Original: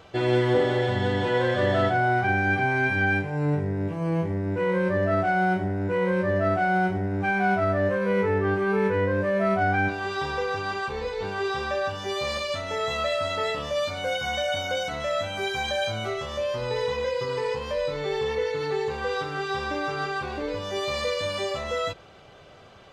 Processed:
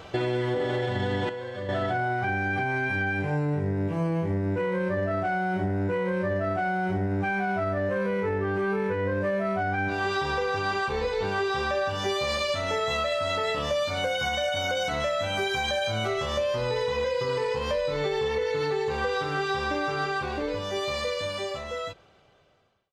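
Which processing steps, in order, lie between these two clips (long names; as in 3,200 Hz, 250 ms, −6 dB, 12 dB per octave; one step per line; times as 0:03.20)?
fade-out on the ending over 4.24 s
brickwall limiter −20 dBFS, peak gain reduction 8.5 dB
downward compressor, threshold −30 dBFS, peak gain reduction 6.5 dB
0:01.29–0:01.69: tuned comb filter 100 Hz, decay 0.39 s, harmonics all, mix 80%
level +6 dB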